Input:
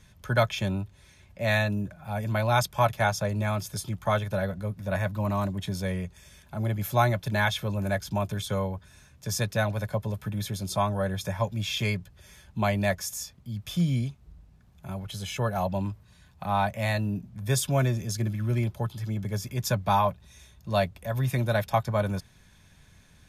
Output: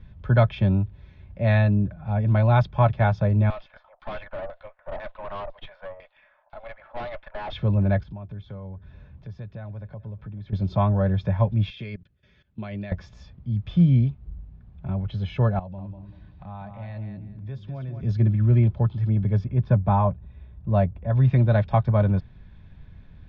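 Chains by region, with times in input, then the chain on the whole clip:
0:03.50–0:07.53: Butterworth high-pass 550 Hz 72 dB per octave + auto-filter low-pass saw down 2 Hz 700–5,400 Hz + tube saturation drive 32 dB, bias 0.5
0:08.03–0:10.53: high-shelf EQ 5,700 Hz −9.5 dB + downward compressor 2.5 to 1, threshold −49 dBFS + single-tap delay 433 ms −22 dB
0:11.70–0:12.92: high-pass filter 390 Hz 6 dB per octave + parametric band 870 Hz −11.5 dB 0.97 octaves + output level in coarse steps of 19 dB
0:15.59–0:18.03: hum removal 76.15 Hz, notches 7 + downward compressor 2 to 1, threshold −53 dBFS + repeating echo 194 ms, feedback 25%, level −7 dB
0:19.44–0:21.10: low-pass filter 3,900 Hz + high-shelf EQ 2,300 Hz −11.5 dB
whole clip: inverse Chebyshev low-pass filter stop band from 9,200 Hz, stop band 50 dB; spectral tilt −3 dB per octave

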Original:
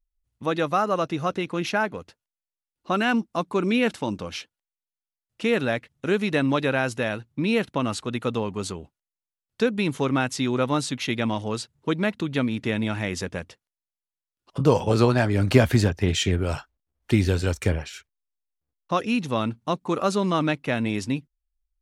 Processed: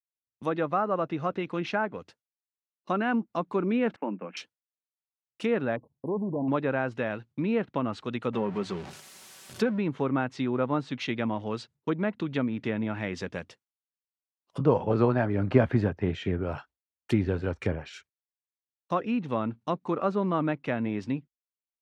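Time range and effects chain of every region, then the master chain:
0:03.96–0:04.37: noise gate −38 dBFS, range −14 dB + Chebyshev band-pass filter 180–2,600 Hz, order 5
0:05.76–0:06.48: transient designer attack −1 dB, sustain +4 dB + gain into a clipping stage and back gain 22 dB + linear-phase brick-wall band-stop 1,100–10,000 Hz
0:08.33–0:09.79: converter with a step at zero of −32 dBFS + mains-hum notches 50/100/150 Hz + comb filter 5.3 ms, depth 39%
whole clip: treble cut that deepens with the level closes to 1,600 Hz, closed at −20.5 dBFS; noise gate with hold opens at −42 dBFS; high-pass filter 110 Hz; level −3.5 dB

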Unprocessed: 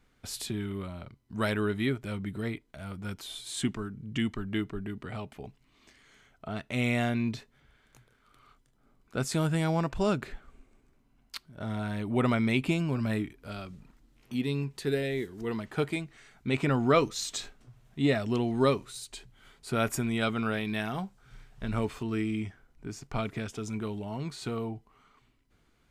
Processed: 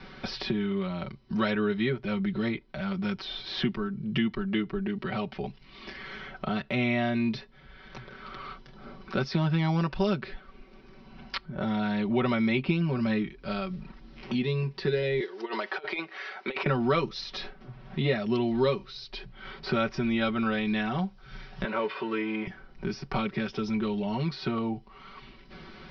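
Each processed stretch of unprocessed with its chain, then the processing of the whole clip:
0:15.20–0:16.66: high-pass filter 420 Hz 24 dB per octave + compressor whose output falls as the input rises −39 dBFS, ratio −0.5
0:21.64–0:22.47: mu-law and A-law mismatch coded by mu + band-pass filter 380–2,600 Hz + comb filter 2 ms, depth 33%
whole clip: Butterworth low-pass 5,500 Hz 96 dB per octave; comb filter 5.3 ms, depth 92%; multiband upward and downward compressor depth 70%

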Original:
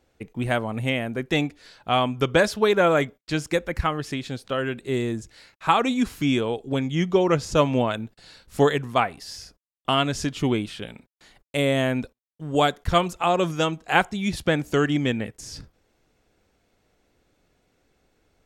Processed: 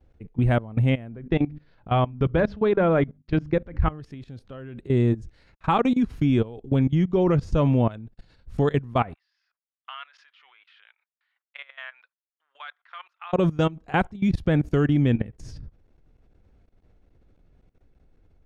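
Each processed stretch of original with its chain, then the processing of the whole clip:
0:01.12–0:03.91: high-frequency loss of the air 180 metres + mains-hum notches 50/100/150/200/250/300 Hz
0:09.14–0:13.33: inverse Chebyshev high-pass filter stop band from 220 Hz, stop band 80 dB + high-frequency loss of the air 330 metres
whole clip: RIAA equalisation playback; notch filter 7,500 Hz, Q 15; output level in coarse steps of 19 dB

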